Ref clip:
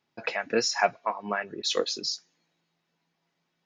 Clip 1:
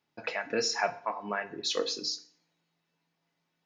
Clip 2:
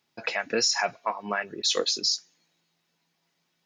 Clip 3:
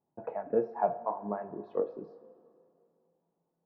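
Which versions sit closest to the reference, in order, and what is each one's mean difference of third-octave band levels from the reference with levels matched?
2, 1, 3; 2.0 dB, 3.5 dB, 10.0 dB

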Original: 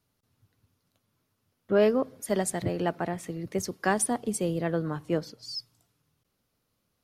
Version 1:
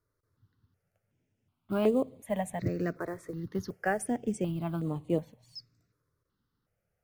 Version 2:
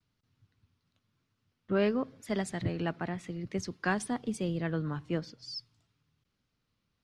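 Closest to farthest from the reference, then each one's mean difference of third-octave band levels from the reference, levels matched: 2, 1; 3.5 dB, 5.0 dB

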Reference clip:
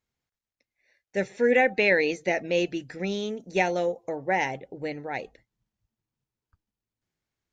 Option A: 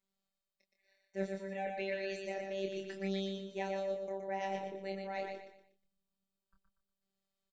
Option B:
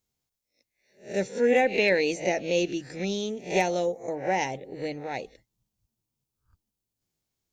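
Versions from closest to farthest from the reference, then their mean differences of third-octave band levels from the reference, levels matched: B, A; 3.5 dB, 8.5 dB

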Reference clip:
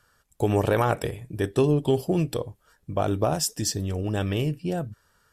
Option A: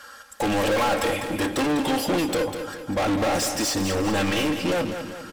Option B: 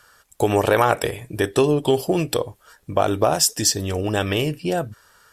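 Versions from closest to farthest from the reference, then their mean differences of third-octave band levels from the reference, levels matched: B, A; 4.0 dB, 12.5 dB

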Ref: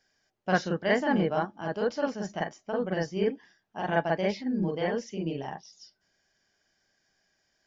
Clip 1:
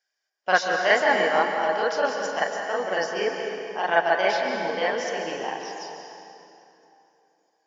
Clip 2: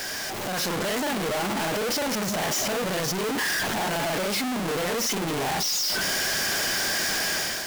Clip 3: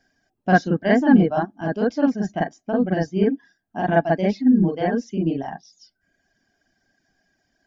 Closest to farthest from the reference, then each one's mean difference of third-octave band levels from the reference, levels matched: 3, 1, 2; 5.0 dB, 10.0 dB, 17.5 dB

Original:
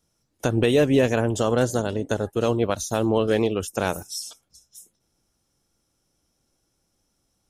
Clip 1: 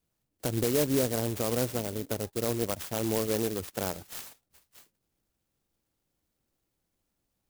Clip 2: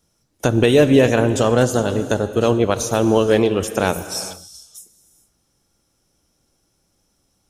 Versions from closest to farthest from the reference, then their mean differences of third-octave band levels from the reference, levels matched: 2, 1; 3.5 dB, 8.5 dB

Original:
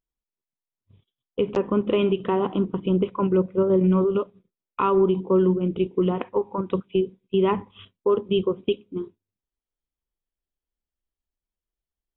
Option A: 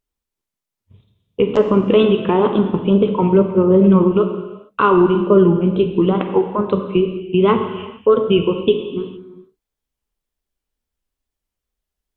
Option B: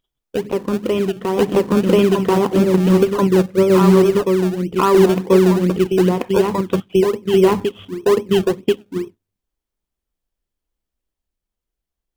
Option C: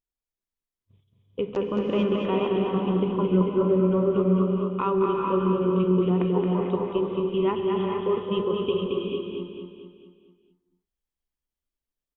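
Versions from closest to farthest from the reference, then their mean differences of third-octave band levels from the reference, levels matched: A, C, B; 4.0 dB, 6.0 dB, 9.0 dB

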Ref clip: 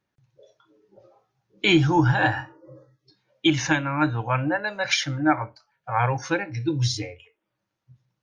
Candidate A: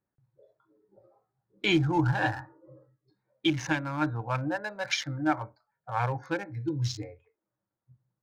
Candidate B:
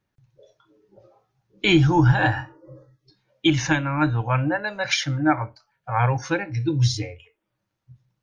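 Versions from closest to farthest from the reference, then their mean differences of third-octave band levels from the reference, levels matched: B, A; 1.0 dB, 2.5 dB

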